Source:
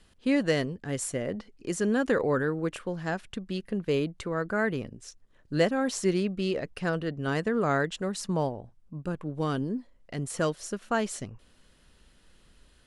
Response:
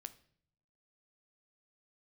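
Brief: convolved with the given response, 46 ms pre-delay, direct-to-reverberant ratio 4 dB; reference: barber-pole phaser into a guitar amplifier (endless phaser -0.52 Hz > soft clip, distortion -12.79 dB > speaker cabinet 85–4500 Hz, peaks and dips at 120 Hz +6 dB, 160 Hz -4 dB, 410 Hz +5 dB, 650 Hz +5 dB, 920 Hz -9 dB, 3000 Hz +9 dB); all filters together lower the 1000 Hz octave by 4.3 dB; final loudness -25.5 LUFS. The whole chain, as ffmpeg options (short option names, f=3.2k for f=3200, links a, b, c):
-filter_complex "[0:a]equalizer=f=1k:t=o:g=-6,asplit=2[a][b];[1:a]atrim=start_sample=2205,adelay=46[c];[b][c]afir=irnorm=-1:irlink=0,volume=1dB[d];[a][d]amix=inputs=2:normalize=0,asplit=2[e][f];[f]afreqshift=-0.52[g];[e][g]amix=inputs=2:normalize=1,asoftclip=threshold=-24.5dB,highpass=85,equalizer=f=120:t=q:w=4:g=6,equalizer=f=160:t=q:w=4:g=-4,equalizer=f=410:t=q:w=4:g=5,equalizer=f=650:t=q:w=4:g=5,equalizer=f=920:t=q:w=4:g=-9,equalizer=f=3k:t=q:w=4:g=9,lowpass=f=4.5k:w=0.5412,lowpass=f=4.5k:w=1.3066,volume=7dB"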